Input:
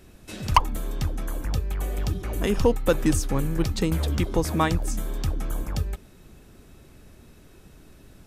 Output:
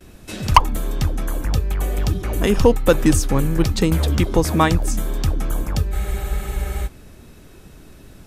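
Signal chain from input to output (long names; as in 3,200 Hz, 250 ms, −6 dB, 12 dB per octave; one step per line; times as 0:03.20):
noise gate with hold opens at −45 dBFS
frozen spectrum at 0:05.94, 0.91 s
level +6.5 dB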